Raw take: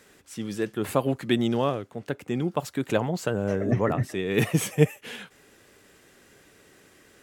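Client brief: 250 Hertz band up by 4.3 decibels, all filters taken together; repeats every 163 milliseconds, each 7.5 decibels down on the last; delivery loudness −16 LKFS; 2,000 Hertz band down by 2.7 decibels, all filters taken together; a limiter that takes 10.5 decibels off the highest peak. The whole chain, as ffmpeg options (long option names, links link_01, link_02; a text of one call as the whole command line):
ffmpeg -i in.wav -af "equalizer=frequency=250:width_type=o:gain=5.5,equalizer=frequency=2000:width_type=o:gain=-3.5,alimiter=limit=-14dB:level=0:latency=1,aecho=1:1:163|326|489|652|815:0.422|0.177|0.0744|0.0312|0.0131,volume=9.5dB" out.wav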